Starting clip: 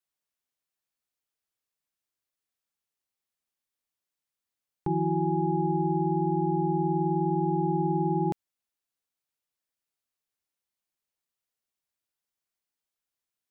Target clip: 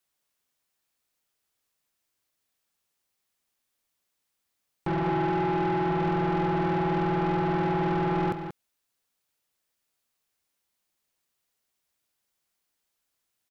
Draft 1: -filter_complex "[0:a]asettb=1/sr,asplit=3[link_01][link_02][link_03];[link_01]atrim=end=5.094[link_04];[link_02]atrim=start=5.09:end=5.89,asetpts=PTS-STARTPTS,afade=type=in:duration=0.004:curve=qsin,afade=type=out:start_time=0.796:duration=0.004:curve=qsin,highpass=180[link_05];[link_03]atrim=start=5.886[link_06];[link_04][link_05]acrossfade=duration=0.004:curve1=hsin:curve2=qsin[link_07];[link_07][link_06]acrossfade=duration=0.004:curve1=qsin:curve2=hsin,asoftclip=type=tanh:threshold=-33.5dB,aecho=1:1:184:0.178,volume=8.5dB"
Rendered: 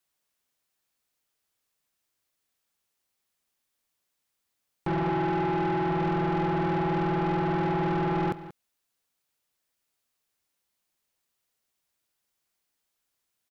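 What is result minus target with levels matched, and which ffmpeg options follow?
echo-to-direct −6.5 dB
-filter_complex "[0:a]asettb=1/sr,asplit=3[link_01][link_02][link_03];[link_01]atrim=end=5.094[link_04];[link_02]atrim=start=5.09:end=5.89,asetpts=PTS-STARTPTS,afade=type=in:duration=0.004:curve=qsin,afade=type=out:start_time=0.796:duration=0.004:curve=qsin,highpass=180[link_05];[link_03]atrim=start=5.886[link_06];[link_04][link_05]acrossfade=duration=0.004:curve1=hsin:curve2=qsin[link_07];[link_07][link_06]acrossfade=duration=0.004:curve1=qsin:curve2=hsin,asoftclip=type=tanh:threshold=-33.5dB,aecho=1:1:184:0.376,volume=8.5dB"

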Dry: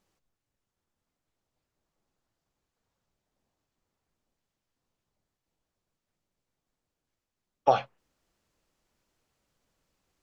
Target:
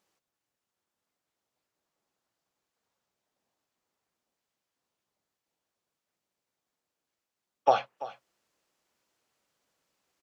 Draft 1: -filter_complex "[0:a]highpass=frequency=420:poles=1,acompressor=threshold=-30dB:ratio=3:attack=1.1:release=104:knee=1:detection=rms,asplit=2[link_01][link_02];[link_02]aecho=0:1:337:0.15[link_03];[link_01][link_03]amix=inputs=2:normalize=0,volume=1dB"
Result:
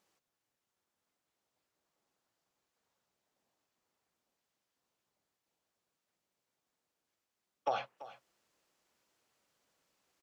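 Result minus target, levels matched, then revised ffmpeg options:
downward compressor: peak gain reduction +13 dB
-filter_complex "[0:a]highpass=frequency=420:poles=1,asplit=2[link_01][link_02];[link_02]aecho=0:1:337:0.15[link_03];[link_01][link_03]amix=inputs=2:normalize=0,volume=1dB"

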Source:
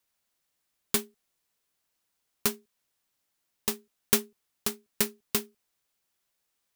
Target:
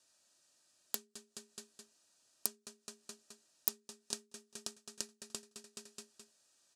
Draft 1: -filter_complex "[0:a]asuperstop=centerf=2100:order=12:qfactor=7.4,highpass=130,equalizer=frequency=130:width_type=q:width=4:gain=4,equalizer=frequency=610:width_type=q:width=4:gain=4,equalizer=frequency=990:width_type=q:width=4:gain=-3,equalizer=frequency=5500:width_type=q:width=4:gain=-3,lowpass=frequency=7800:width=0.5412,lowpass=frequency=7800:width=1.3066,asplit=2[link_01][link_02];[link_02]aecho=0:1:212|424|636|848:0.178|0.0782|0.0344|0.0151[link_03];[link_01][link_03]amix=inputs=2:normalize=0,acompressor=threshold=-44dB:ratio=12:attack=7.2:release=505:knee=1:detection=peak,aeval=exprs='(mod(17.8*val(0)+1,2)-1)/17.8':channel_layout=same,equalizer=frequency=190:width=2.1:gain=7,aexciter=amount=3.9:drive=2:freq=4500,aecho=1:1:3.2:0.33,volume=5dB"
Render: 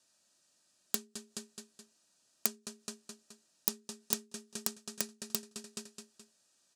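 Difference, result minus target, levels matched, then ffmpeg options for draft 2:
downward compressor: peak gain reduction −6.5 dB; 250 Hz band +4.5 dB
-filter_complex "[0:a]asuperstop=centerf=2100:order=12:qfactor=7.4,highpass=130,equalizer=frequency=130:width_type=q:width=4:gain=4,equalizer=frequency=610:width_type=q:width=4:gain=4,equalizer=frequency=990:width_type=q:width=4:gain=-3,equalizer=frequency=5500:width_type=q:width=4:gain=-3,lowpass=frequency=7800:width=0.5412,lowpass=frequency=7800:width=1.3066,asplit=2[link_01][link_02];[link_02]aecho=0:1:212|424|636|848:0.178|0.0782|0.0344|0.0151[link_03];[link_01][link_03]amix=inputs=2:normalize=0,acompressor=threshold=-51dB:ratio=12:attack=7.2:release=505:knee=1:detection=peak,aeval=exprs='(mod(17.8*val(0)+1,2)-1)/17.8':channel_layout=same,aexciter=amount=3.9:drive=2:freq=4500,aecho=1:1:3.2:0.33,volume=5dB"

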